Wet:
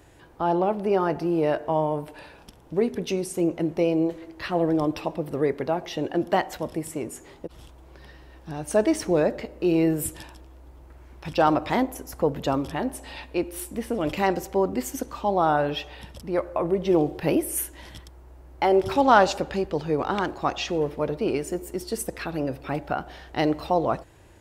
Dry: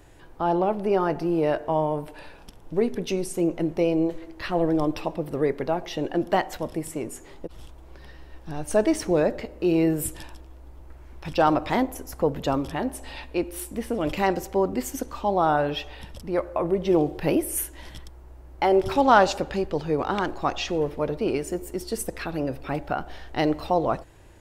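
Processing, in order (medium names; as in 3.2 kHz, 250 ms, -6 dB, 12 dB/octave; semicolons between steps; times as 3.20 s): high-pass 50 Hz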